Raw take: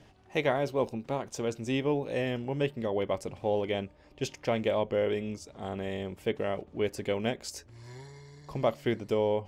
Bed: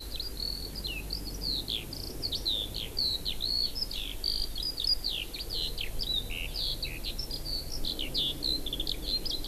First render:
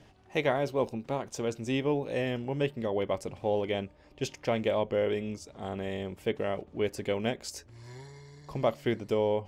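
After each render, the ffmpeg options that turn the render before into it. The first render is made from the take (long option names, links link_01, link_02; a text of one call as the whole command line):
ffmpeg -i in.wav -af anull out.wav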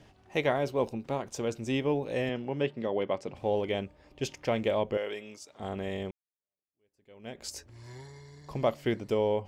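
ffmpeg -i in.wav -filter_complex "[0:a]asettb=1/sr,asplit=3[link_01][link_02][link_03];[link_01]atrim=end=2.294[link_04];[link_02]atrim=start=2.29:end=3.35,asetpts=PTS-STARTPTS,afade=type=in:duration=0.004:curve=qsin,afade=type=out:start_time=1.056:duration=0.004:curve=qsin,highpass=140,lowpass=4900[link_05];[link_03]atrim=start=3.346[link_06];[link_04][link_05]acrossfade=duration=0.004:curve1=hsin:curve2=qsin[link_07];[link_07][link_06]acrossfade=duration=0.004:curve1=qsin:curve2=hsin,asettb=1/sr,asplit=3[link_08][link_09][link_10];[link_08]atrim=end=4.974[link_11];[link_09]atrim=start=4.97:end=5.6,asetpts=PTS-STARTPTS,afade=type=in:duration=0.004:curve=qsin,afade=type=out:start_time=0.626:duration=0.004:curve=qsin,highpass=frequency=940:poles=1[link_12];[link_10]atrim=start=5.596[link_13];[link_11][link_12]acrossfade=duration=0.004:curve1=hsin:curve2=qsin[link_14];[link_14][link_13]acrossfade=duration=0.004:curve1=qsin:curve2=hsin,asplit=2[link_15][link_16];[link_15]atrim=end=6.11,asetpts=PTS-STARTPTS,afade=type=out:start_time=6.106:duration=0.004:curve=hsin[link_17];[link_16]atrim=start=6.11,asetpts=PTS-STARTPTS,afade=type=in:duration=1.33:curve=exp[link_18];[link_17][link_18]concat=n=2:v=0:a=1" out.wav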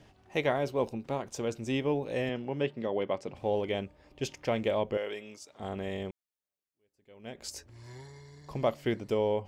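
ffmpeg -i in.wav -af "volume=-1dB" out.wav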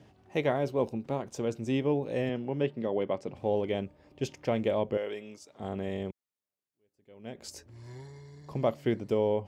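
ffmpeg -i in.wav -af "highpass=85,tiltshelf=frequency=670:gain=3.5" out.wav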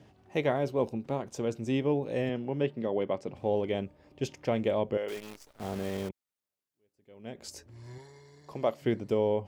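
ffmpeg -i in.wav -filter_complex "[0:a]asettb=1/sr,asplit=3[link_01][link_02][link_03];[link_01]atrim=end=5.084[link_04];[link_02]atrim=start=5.08:end=6.09,asetpts=PTS-STARTPTS,afade=type=in:duration=0.004:curve=qsin,afade=type=out:start_time=1.006:duration=0.004:curve=qsin,acrusher=bits=8:dc=4:mix=0:aa=0.000001[link_05];[link_03]atrim=start=6.086[link_06];[link_04][link_05]acrossfade=duration=0.004:curve1=hsin:curve2=qsin[link_07];[link_07][link_06]acrossfade=duration=0.004:curve1=qsin:curve2=hsin,asettb=1/sr,asplit=3[link_08][link_09][link_10];[link_08]atrim=end=7.984[link_11];[link_09]atrim=start=7.98:end=8.82,asetpts=PTS-STARTPTS,afade=type=in:duration=0.004:curve=qsin,afade=type=out:start_time=0.836:duration=0.004:curve=qsin,bass=frequency=250:gain=-10,treble=frequency=4000:gain=1[link_12];[link_10]atrim=start=8.816[link_13];[link_11][link_12]acrossfade=duration=0.004:curve1=hsin:curve2=qsin[link_14];[link_14][link_13]acrossfade=duration=0.004:curve1=qsin:curve2=hsin" out.wav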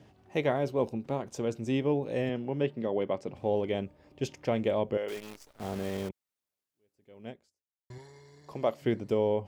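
ffmpeg -i in.wav -filter_complex "[0:a]asplit=2[link_01][link_02];[link_01]atrim=end=7.9,asetpts=PTS-STARTPTS,afade=type=out:start_time=7.3:duration=0.6:curve=exp[link_03];[link_02]atrim=start=7.9,asetpts=PTS-STARTPTS,afade=type=in:duration=0.004:curve=hsin[link_04];[link_03][link_04]concat=n=2:v=0:a=1" out.wav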